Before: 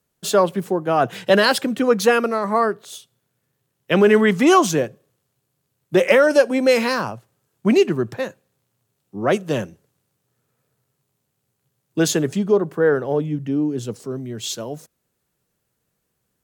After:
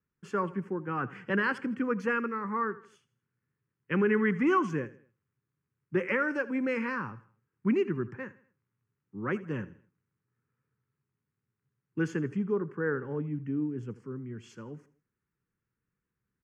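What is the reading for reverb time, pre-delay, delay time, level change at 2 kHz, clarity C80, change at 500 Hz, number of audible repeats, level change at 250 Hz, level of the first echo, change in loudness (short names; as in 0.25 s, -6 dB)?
none, none, 81 ms, -9.5 dB, none, -15.5 dB, 3, -10.0 dB, -18.5 dB, -12.5 dB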